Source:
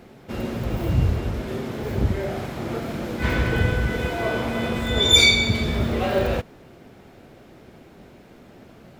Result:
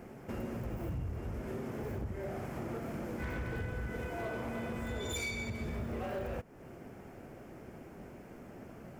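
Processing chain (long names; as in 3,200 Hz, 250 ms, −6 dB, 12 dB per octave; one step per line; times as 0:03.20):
parametric band 3,800 Hz −15 dB 0.62 octaves
downward compressor 3 to 1, threshold −36 dBFS, peak gain reduction 15.5 dB
hard clipping −30 dBFS, distortion −17 dB
level −2.5 dB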